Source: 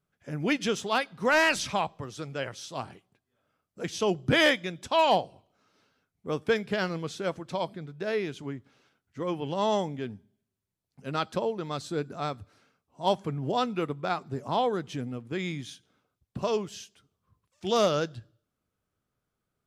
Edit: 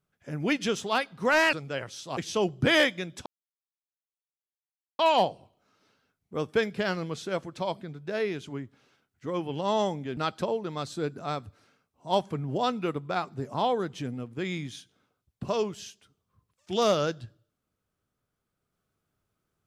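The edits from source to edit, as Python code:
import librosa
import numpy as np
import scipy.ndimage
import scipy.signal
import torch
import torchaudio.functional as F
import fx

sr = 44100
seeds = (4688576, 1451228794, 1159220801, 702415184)

y = fx.edit(x, sr, fx.cut(start_s=1.53, length_s=0.65),
    fx.cut(start_s=2.82, length_s=1.01),
    fx.insert_silence(at_s=4.92, length_s=1.73),
    fx.cut(start_s=10.1, length_s=1.01), tone=tone)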